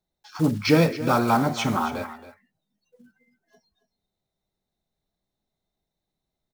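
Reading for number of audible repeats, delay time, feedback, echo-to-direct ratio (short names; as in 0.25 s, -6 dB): 1, 0.274 s, no steady repeat, -14.5 dB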